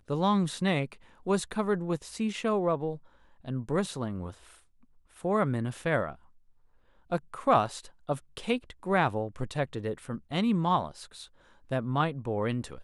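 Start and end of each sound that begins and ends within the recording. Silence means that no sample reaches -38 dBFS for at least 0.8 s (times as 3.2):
5.25–6.13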